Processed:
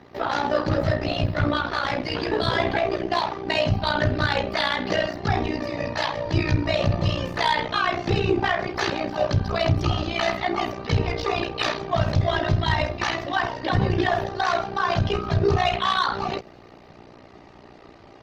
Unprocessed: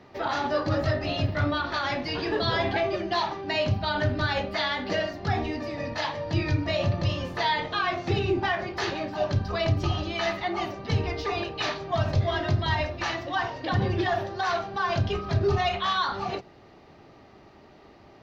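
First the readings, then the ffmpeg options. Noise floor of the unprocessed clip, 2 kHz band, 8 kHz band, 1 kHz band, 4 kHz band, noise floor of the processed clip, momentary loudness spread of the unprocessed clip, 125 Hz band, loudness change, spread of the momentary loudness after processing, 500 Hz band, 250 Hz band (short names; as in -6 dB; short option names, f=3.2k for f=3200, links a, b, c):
-52 dBFS, +3.5 dB, n/a, +3.5 dB, +3.5 dB, -48 dBFS, 5 LU, +3.0 dB, +3.5 dB, 4 LU, +3.5 dB, +4.0 dB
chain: -af "tremolo=f=60:d=0.788,asoftclip=type=tanh:threshold=-17.5dB,volume=8dB" -ar 48000 -c:a libopus -b:a 20k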